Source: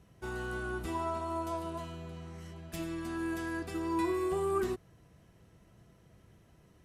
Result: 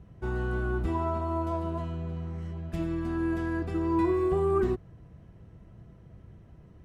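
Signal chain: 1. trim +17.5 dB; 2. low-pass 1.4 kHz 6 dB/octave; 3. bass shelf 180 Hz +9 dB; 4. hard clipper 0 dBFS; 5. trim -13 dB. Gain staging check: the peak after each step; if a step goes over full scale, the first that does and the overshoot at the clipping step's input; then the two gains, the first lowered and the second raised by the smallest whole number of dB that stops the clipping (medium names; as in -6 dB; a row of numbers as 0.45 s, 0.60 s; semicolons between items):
-3.0 dBFS, -4.0 dBFS, -2.5 dBFS, -2.5 dBFS, -15.5 dBFS; nothing clips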